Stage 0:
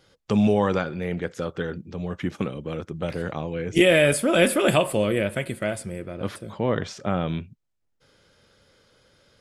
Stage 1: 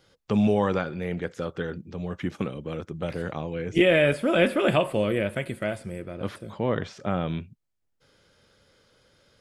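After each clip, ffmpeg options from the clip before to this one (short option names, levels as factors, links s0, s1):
-filter_complex "[0:a]acrossover=split=3800[s0][s1];[s1]acompressor=threshold=0.00447:ratio=4:attack=1:release=60[s2];[s0][s2]amix=inputs=2:normalize=0,volume=0.794"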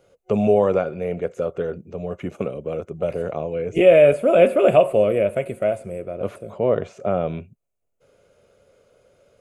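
-af "superequalizer=7b=2.51:8b=3.16:11b=0.501:13b=0.398:14b=0.355"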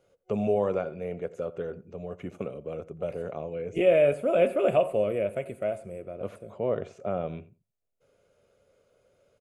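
-filter_complex "[0:a]asplit=2[s0][s1];[s1]adelay=88,lowpass=f=1700:p=1,volume=0.141,asplit=2[s2][s3];[s3]adelay=88,lowpass=f=1700:p=1,volume=0.18[s4];[s0][s2][s4]amix=inputs=3:normalize=0,volume=0.376"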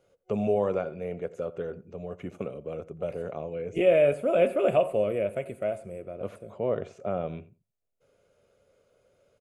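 -af anull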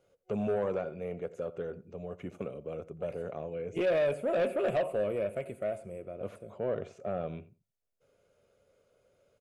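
-af "asoftclip=type=tanh:threshold=0.1,volume=0.708"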